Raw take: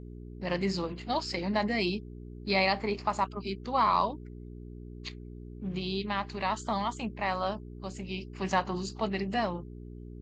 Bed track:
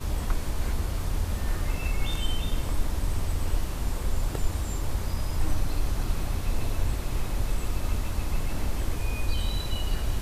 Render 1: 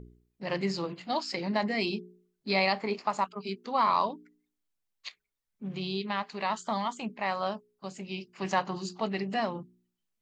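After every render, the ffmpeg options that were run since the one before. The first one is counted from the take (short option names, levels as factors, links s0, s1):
-af "bandreject=f=60:t=h:w=4,bandreject=f=120:t=h:w=4,bandreject=f=180:t=h:w=4,bandreject=f=240:t=h:w=4,bandreject=f=300:t=h:w=4,bandreject=f=360:t=h:w=4,bandreject=f=420:t=h:w=4"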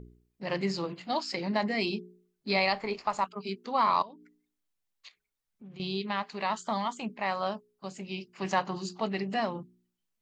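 -filter_complex "[0:a]asplit=3[s0][s1][s2];[s0]afade=t=out:st=2.56:d=0.02[s3];[s1]asubboost=boost=8.5:cutoff=77,afade=t=in:st=2.56:d=0.02,afade=t=out:st=3.22:d=0.02[s4];[s2]afade=t=in:st=3.22:d=0.02[s5];[s3][s4][s5]amix=inputs=3:normalize=0,asettb=1/sr,asplit=3[s6][s7][s8];[s6]atrim=end=4.024[s9];[s7]atrim=start=4.02:end=5.8,asetpts=PTS-STARTPTS,afade=t=in:d=0.004:c=qsin,afade=t=out:st=1.776:d=0.004:c=qsin,acompressor=threshold=0.00316:ratio=2.5:attack=3.2:release=140:knee=1:detection=peak[s10];[s8]atrim=start=5.796[s11];[s9][s10]acrossfade=d=0.004:c1=hsin:c2=qsin[s12];[s12][s11]acrossfade=d=0.004:c1=qsin:c2=hsin"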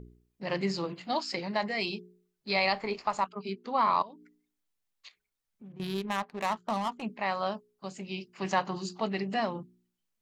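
-filter_complex "[0:a]asettb=1/sr,asplit=3[s0][s1][s2];[s0]atrim=end=1.404[s3];[s1]atrim=start=1.4:end=2.65,asetpts=PTS-STARTPTS,afade=t=in:d=0.004:c=qsin,afade=t=out:st=1.246:d=0.004:c=qsin,equalizer=f=270:t=o:w=0.77:g=-10.5[s4];[s2]atrim=start=2.646[s5];[s3][s4]acrossfade=d=0.004:c1=hsin:c2=qsin[s6];[s6][s5]acrossfade=d=0.004:c1=qsin:c2=hsin,asettb=1/sr,asplit=3[s7][s8][s9];[s7]atrim=end=3.244[s10];[s8]atrim=start=3.24:end=4.06,asetpts=PTS-STARTPTS,afade=t=in:d=0.004:c=qsin,afade=t=out:st=0.816:d=0.004:c=qsin,highshelf=f=4200:g=-8[s11];[s9]atrim=start=4.056[s12];[s10][s11]acrossfade=d=0.004:c1=hsin:c2=qsin[s13];[s13][s12]acrossfade=d=0.004:c1=qsin:c2=hsin,asettb=1/sr,asplit=3[s14][s15][s16];[s14]atrim=end=5.724[s17];[s15]atrim=start=5.72:end=7.02,asetpts=PTS-STARTPTS,afade=t=in:d=0.004:c=qsin,afade=t=out:st=1.296:d=0.004:c=qsin,adynamicsmooth=sensitivity=7:basefreq=660[s18];[s16]atrim=start=7.016[s19];[s17][s18]acrossfade=d=0.004:c1=hsin:c2=qsin[s20];[s20][s19]acrossfade=d=0.004:c1=qsin:c2=hsin"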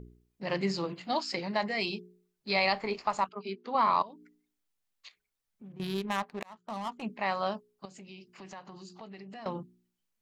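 -filter_complex "[0:a]asettb=1/sr,asplit=3[s0][s1][s2];[s0]atrim=end=3.294[s3];[s1]atrim=start=3.29:end=3.75,asetpts=PTS-STARTPTS,afade=t=in:d=0.004:c=qsin,afade=t=out:st=0.456:d=0.004:c=qsin,highpass=230,lowpass=5300[s4];[s2]atrim=start=3.746[s5];[s3][s4]acrossfade=d=0.004:c1=hsin:c2=qsin[s6];[s6][s5]acrossfade=d=0.004:c1=qsin:c2=hsin,asettb=1/sr,asplit=3[s7][s8][s9];[s7]atrim=end=7.854[s10];[s8]atrim=start=7.85:end=9.46,asetpts=PTS-STARTPTS,afade=t=in:d=0.004:c=qsin,afade=t=out:st=1.606:d=0.004:c=qsin,acompressor=threshold=0.00398:ratio=3:attack=3.2:release=140:knee=1:detection=peak[s11];[s9]atrim=start=9.456[s12];[s10][s11]acrossfade=d=0.004:c1=hsin:c2=qsin[s13];[s13][s12]acrossfade=d=0.004:c1=qsin:c2=hsin,asplit=2[s14][s15];[s14]atrim=end=6.43,asetpts=PTS-STARTPTS,afade=t=out:st=6.426:d=0.004:c=hsin[s16];[s15]atrim=start=6.43,asetpts=PTS-STARTPTS,afade=t=in:d=0.7[s17];[s16][s17]concat=n=2:v=0:a=1"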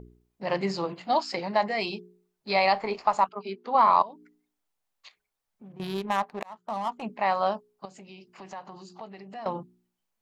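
-af "equalizer=f=780:w=0.95:g=8"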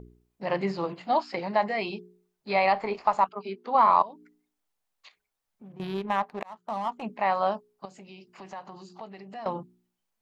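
-filter_complex "[0:a]acrossover=split=3500[s0][s1];[s1]acompressor=threshold=0.00224:ratio=4:attack=1:release=60[s2];[s0][s2]amix=inputs=2:normalize=0"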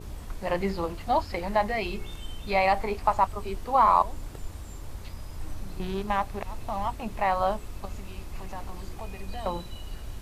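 -filter_complex "[1:a]volume=0.299[s0];[0:a][s0]amix=inputs=2:normalize=0"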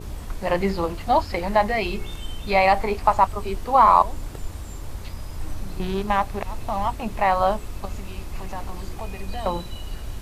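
-af "volume=1.88"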